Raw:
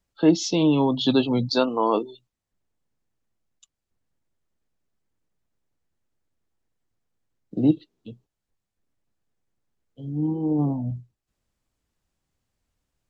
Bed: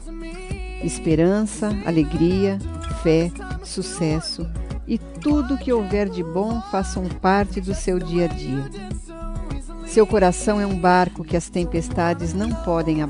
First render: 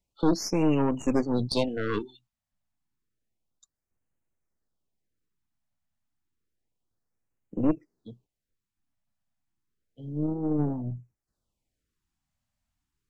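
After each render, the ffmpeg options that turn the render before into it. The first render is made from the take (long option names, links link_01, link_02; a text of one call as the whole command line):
ffmpeg -i in.wav -af "aeval=exprs='(tanh(7.08*val(0)+0.75)-tanh(0.75))/7.08':channel_layout=same,afftfilt=real='re*(1-between(b*sr/1024,380*pow(4400/380,0.5+0.5*sin(2*PI*0.3*pts/sr))/1.41,380*pow(4400/380,0.5+0.5*sin(2*PI*0.3*pts/sr))*1.41))':imag='im*(1-between(b*sr/1024,380*pow(4400/380,0.5+0.5*sin(2*PI*0.3*pts/sr))/1.41,380*pow(4400/380,0.5+0.5*sin(2*PI*0.3*pts/sr))*1.41))':win_size=1024:overlap=0.75" out.wav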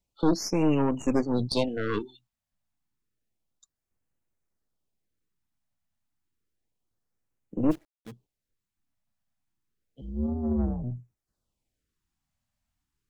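ffmpeg -i in.wav -filter_complex "[0:a]asplit=3[link_01][link_02][link_03];[link_01]afade=type=out:start_time=7.7:duration=0.02[link_04];[link_02]acrusher=bits=8:dc=4:mix=0:aa=0.000001,afade=type=in:start_time=7.7:duration=0.02,afade=type=out:start_time=8.1:duration=0.02[link_05];[link_03]afade=type=in:start_time=8.1:duration=0.02[link_06];[link_04][link_05][link_06]amix=inputs=3:normalize=0,asettb=1/sr,asplit=3[link_07][link_08][link_09];[link_07]atrim=end=10.014[link_10];[link_08]atrim=start=10.01:end=10.84,asetpts=PTS-STARTPTS,afade=type=in:duration=0.004:curve=qsin,afade=type=out:start_time=0.826:duration=0.004:curve=qsin,afreqshift=-82[link_11];[link_09]atrim=start=10.836[link_12];[link_10][link_11]acrossfade=duration=0.004:curve1=hsin:curve2=qsin[link_13];[link_13][link_12]acrossfade=duration=0.004:curve1=qsin:curve2=hsin" out.wav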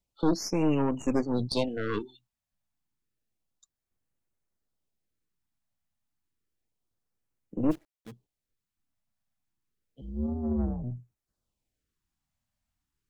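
ffmpeg -i in.wav -af "volume=-2dB" out.wav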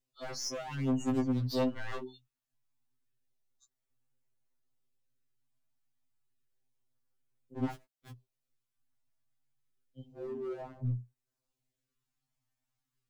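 ffmpeg -i in.wav -af "asoftclip=type=hard:threshold=-30dB,afftfilt=real='re*2.45*eq(mod(b,6),0)':imag='im*2.45*eq(mod(b,6),0)':win_size=2048:overlap=0.75" out.wav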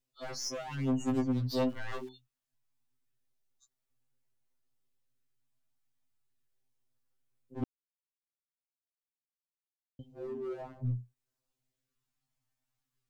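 ffmpeg -i in.wav -filter_complex "[0:a]asettb=1/sr,asplit=3[link_01][link_02][link_03];[link_01]atrim=end=1.694[link_04];[link_02]atrim=start=1.69:end=2.09,asetpts=PTS-STARTPTS,afade=type=in:duration=0.004:curve=qsin,afade=type=out:start_time=0.396:duration=0.004:curve=qsin,aeval=exprs='val(0)*gte(abs(val(0)),0.002)':channel_layout=same[link_05];[link_03]atrim=start=2.086[link_06];[link_04][link_05]acrossfade=duration=0.004:curve1=hsin:curve2=qsin[link_07];[link_07][link_06]acrossfade=duration=0.004:curve1=qsin:curve2=hsin,asplit=3[link_08][link_09][link_10];[link_08]atrim=end=7.64,asetpts=PTS-STARTPTS,afade=type=out:start_time=7.636:duration=0.004:curve=hsin[link_11];[link_09]atrim=start=7.64:end=9.99,asetpts=PTS-STARTPTS,volume=0[link_12];[link_10]atrim=start=9.99,asetpts=PTS-STARTPTS,afade=type=in:duration=0.004:curve=hsin[link_13];[link_11][link_12][link_13]concat=n=3:v=0:a=1" out.wav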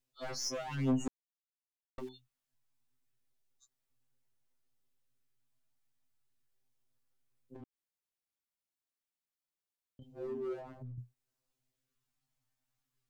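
ffmpeg -i in.wav -filter_complex "[0:a]asettb=1/sr,asplit=3[link_01][link_02][link_03];[link_01]atrim=end=7.564[link_04];[link_02]atrim=start=7.56:end=10.02,asetpts=PTS-STARTPTS,afade=type=in:duration=0.004:curve=qsin,afade=type=out:start_time=2.456:duration=0.004:curve=qsin,acompressor=threshold=-51dB:ratio=4:attack=3.2:release=140:knee=1:detection=peak[link_05];[link_03]atrim=start=10.016[link_06];[link_04][link_05]acrossfade=duration=0.004:curve1=hsin:curve2=qsin[link_07];[link_07][link_06]acrossfade=duration=0.004:curve1=qsin:curve2=hsin,asettb=1/sr,asplit=3[link_08][link_09][link_10];[link_08]atrim=end=10.584[link_11];[link_09]atrim=start=10.58:end=10.98,asetpts=PTS-STARTPTS,afade=type=in:duration=0.004:curve=qsin,afade=type=out:start_time=0.396:duration=0.004:curve=qsin,acompressor=threshold=-43dB:ratio=10:attack=3.2:release=140:knee=1:detection=peak[link_12];[link_10]atrim=start=10.976[link_13];[link_11][link_12]acrossfade=duration=0.004:curve1=hsin:curve2=qsin[link_14];[link_14][link_13]acrossfade=duration=0.004:curve1=qsin:curve2=hsin,asplit=3[link_15][link_16][link_17];[link_15]atrim=end=1.08,asetpts=PTS-STARTPTS,afade=type=out:start_time=1.076:duration=0.004:curve=hsin[link_18];[link_16]atrim=start=1.08:end=1.98,asetpts=PTS-STARTPTS,volume=0[link_19];[link_17]atrim=start=1.98,asetpts=PTS-STARTPTS,afade=type=in:duration=0.004:curve=hsin[link_20];[link_18][link_19][link_20]concat=n=3:v=0:a=1" out.wav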